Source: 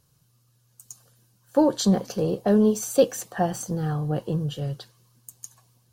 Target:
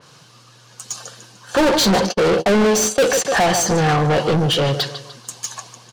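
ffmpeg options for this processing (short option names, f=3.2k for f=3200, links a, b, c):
-filter_complex "[0:a]aecho=1:1:149|298|447:0.141|0.0551|0.0215,asettb=1/sr,asplit=3[a][b][c];[a]atrim=end=1.624[d];[b]atrim=start=1.62:end=3.25,asetpts=PTS-STARTPTS,afade=t=in:d=0.004:c=qsin,afade=t=out:st=1.626:d=0.004:c=qsin,agate=range=-48dB:threshold=-29dB:ratio=16:detection=peak[e];[c]atrim=start=3.246[f];[d][e]acrossfade=d=0.004:c1=hsin:c2=qsin[g];[g][f]acrossfade=d=0.004:c1=qsin:c2=hsin,highpass=110,lowpass=5.9k,asplit=2[h][i];[i]highpass=f=720:p=1,volume=35dB,asoftclip=type=tanh:threshold=-8.5dB[j];[h][j]amix=inputs=2:normalize=0,lowpass=f=4.4k:p=1,volume=-6dB,adynamicequalizer=threshold=0.0178:dfrequency=3400:dqfactor=0.7:tfrequency=3400:tqfactor=0.7:attack=5:release=100:ratio=0.375:range=1.5:mode=boostabove:tftype=highshelf"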